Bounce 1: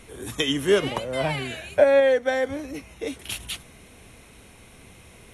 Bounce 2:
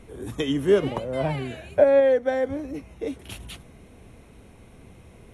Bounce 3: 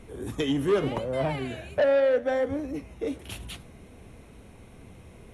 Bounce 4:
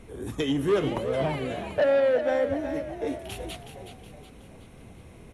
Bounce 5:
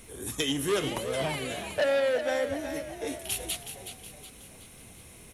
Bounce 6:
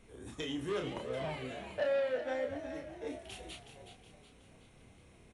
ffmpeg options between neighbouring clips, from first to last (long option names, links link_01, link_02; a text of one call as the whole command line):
ffmpeg -i in.wav -af "tiltshelf=frequency=1200:gain=6.5,volume=-4dB" out.wav
ffmpeg -i in.wav -af "asoftclip=type=tanh:threshold=-18dB,flanger=delay=8.9:depth=6.6:regen=-81:speed=0.82:shape=triangular,volume=4.5dB" out.wav
ffmpeg -i in.wav -filter_complex "[0:a]asplit=6[link_01][link_02][link_03][link_04][link_05][link_06];[link_02]adelay=370,afreqshift=47,volume=-9.5dB[link_07];[link_03]adelay=740,afreqshift=94,volume=-15.9dB[link_08];[link_04]adelay=1110,afreqshift=141,volume=-22.3dB[link_09];[link_05]adelay=1480,afreqshift=188,volume=-28.6dB[link_10];[link_06]adelay=1850,afreqshift=235,volume=-35dB[link_11];[link_01][link_07][link_08][link_09][link_10][link_11]amix=inputs=6:normalize=0" out.wav
ffmpeg -i in.wav -af "crystalizer=i=7:c=0,volume=-5.5dB" out.wav
ffmpeg -i in.wav -filter_complex "[0:a]aemphasis=mode=reproduction:type=75kf,asplit=2[link_01][link_02];[link_02]adelay=31,volume=-4.5dB[link_03];[link_01][link_03]amix=inputs=2:normalize=0,aresample=22050,aresample=44100,volume=-8.5dB" out.wav